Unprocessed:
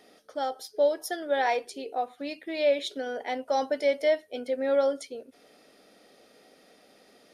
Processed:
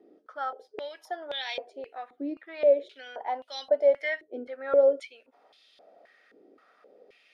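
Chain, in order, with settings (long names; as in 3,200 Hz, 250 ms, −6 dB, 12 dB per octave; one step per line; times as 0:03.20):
band-pass on a step sequencer 3.8 Hz 340–3,500 Hz
level +8.5 dB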